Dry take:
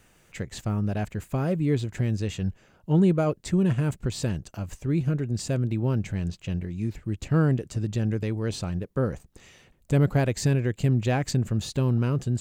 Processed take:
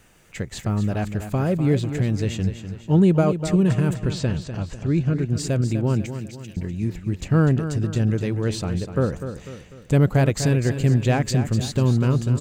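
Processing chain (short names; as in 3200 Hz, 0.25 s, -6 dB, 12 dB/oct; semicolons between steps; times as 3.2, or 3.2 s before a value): 3.98–5.19 LPF 5700 Hz 12 dB/oct; 6.06–6.57 differentiator; feedback echo 0.248 s, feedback 46%, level -10 dB; gain +4 dB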